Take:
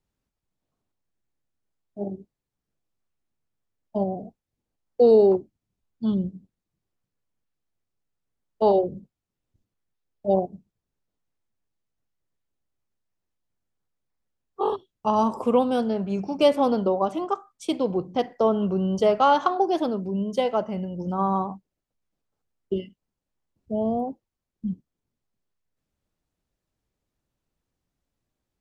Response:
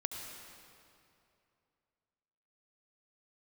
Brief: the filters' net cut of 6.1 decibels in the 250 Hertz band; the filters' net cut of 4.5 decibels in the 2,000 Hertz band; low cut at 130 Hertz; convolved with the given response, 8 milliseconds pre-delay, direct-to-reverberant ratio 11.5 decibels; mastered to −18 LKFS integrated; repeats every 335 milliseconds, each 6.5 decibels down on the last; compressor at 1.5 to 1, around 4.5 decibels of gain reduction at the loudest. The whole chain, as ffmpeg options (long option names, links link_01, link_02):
-filter_complex "[0:a]highpass=130,equalizer=frequency=250:width_type=o:gain=-7.5,equalizer=frequency=2000:width_type=o:gain=-7,acompressor=threshold=-27dB:ratio=1.5,aecho=1:1:335|670|1005|1340|1675|2010:0.473|0.222|0.105|0.0491|0.0231|0.0109,asplit=2[link_01][link_02];[1:a]atrim=start_sample=2205,adelay=8[link_03];[link_02][link_03]afir=irnorm=-1:irlink=0,volume=-12.5dB[link_04];[link_01][link_04]amix=inputs=2:normalize=0,volume=11.5dB"